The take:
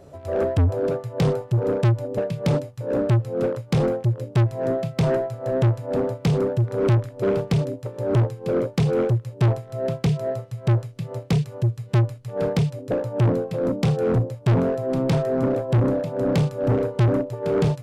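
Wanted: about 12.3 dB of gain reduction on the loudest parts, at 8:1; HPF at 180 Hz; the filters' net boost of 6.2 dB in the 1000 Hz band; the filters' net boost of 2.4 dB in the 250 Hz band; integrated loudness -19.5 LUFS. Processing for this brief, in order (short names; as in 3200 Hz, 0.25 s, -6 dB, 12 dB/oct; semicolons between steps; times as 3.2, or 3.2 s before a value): HPF 180 Hz; bell 250 Hz +5 dB; bell 1000 Hz +8 dB; compressor 8:1, threshold -28 dBFS; gain +13 dB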